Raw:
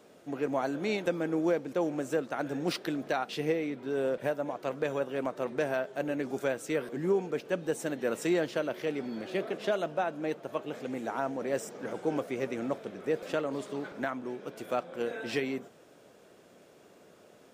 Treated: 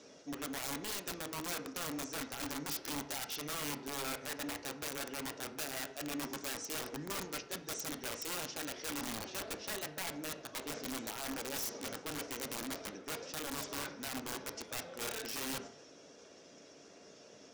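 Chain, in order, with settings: bin magnitudes rounded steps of 15 dB; ladder low-pass 6200 Hz, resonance 70%; reverse; compressor 12:1, threshold -48 dBFS, peak gain reduction 14.5 dB; reverse; wrapped overs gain 47 dB; high shelf 4300 Hz +7 dB; on a send: reverb RT60 0.65 s, pre-delay 4 ms, DRR 7 dB; on the sum: gain +10 dB

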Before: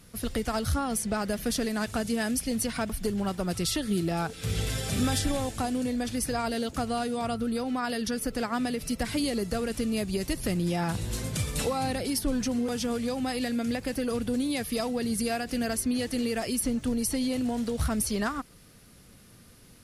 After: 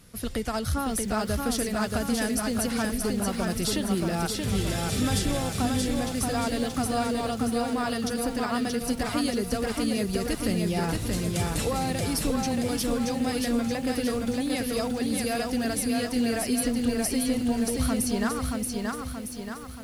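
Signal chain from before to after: lo-fi delay 0.628 s, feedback 55%, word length 9-bit, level -3 dB

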